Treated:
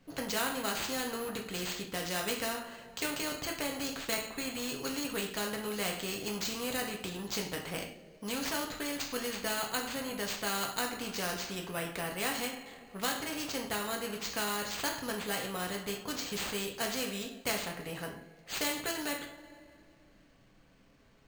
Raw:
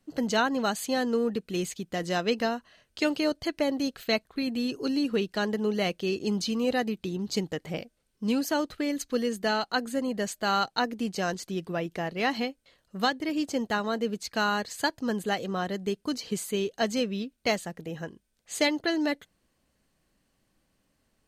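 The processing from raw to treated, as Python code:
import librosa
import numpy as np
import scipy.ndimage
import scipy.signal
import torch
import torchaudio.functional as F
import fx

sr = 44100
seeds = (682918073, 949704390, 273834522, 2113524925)

y = fx.rev_double_slope(x, sr, seeds[0], early_s=0.39, late_s=2.2, knee_db=-27, drr_db=0.0)
y = fx.sample_hold(y, sr, seeds[1], rate_hz=11000.0, jitter_pct=0)
y = fx.high_shelf(y, sr, hz=5100.0, db=-8.0)
y = fx.spectral_comp(y, sr, ratio=2.0)
y = F.gain(torch.from_numpy(y), -7.0).numpy()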